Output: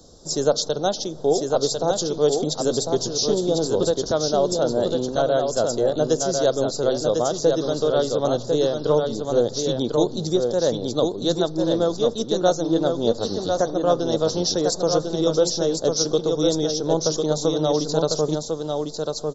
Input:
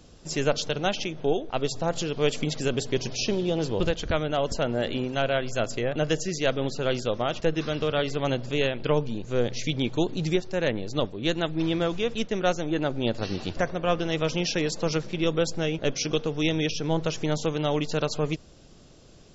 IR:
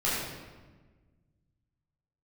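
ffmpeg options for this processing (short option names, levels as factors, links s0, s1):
-filter_complex "[0:a]acrossover=split=110[s0][s1];[s0]acompressor=threshold=0.00891:ratio=6[s2];[s2][s1]amix=inputs=2:normalize=0,firequalizer=gain_entry='entry(160,0);entry(490,7);entry(1400,-2);entry(2400,-26);entry(3700,6);entry(5900,8)':delay=0.05:min_phase=1,aecho=1:1:1049:0.596"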